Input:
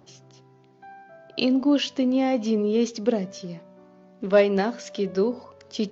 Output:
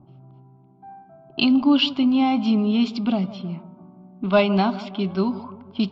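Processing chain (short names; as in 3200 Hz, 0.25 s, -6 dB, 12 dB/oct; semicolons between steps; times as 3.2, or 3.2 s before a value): fixed phaser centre 1800 Hz, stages 6; dark delay 0.162 s, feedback 53%, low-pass 1300 Hz, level -15.5 dB; low-pass opened by the level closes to 560 Hz, open at -26.5 dBFS; gain +8 dB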